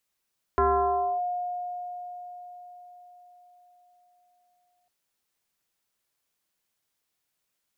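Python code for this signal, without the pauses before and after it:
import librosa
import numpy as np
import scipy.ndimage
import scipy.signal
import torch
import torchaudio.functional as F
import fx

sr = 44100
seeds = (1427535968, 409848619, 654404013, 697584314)

y = fx.fm2(sr, length_s=4.3, level_db=-18.0, carrier_hz=715.0, ratio=0.45, index=1.8, index_s=0.63, decay_s=4.97, shape='linear')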